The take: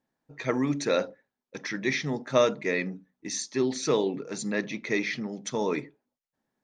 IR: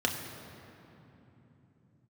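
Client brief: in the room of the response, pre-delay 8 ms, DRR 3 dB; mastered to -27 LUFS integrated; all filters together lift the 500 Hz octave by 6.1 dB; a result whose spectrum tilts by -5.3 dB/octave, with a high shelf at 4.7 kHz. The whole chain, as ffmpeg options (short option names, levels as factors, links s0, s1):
-filter_complex "[0:a]equalizer=f=500:t=o:g=7.5,highshelf=f=4700:g=-7.5,asplit=2[s0][s1];[1:a]atrim=start_sample=2205,adelay=8[s2];[s1][s2]afir=irnorm=-1:irlink=0,volume=0.251[s3];[s0][s3]amix=inputs=2:normalize=0,volume=0.596"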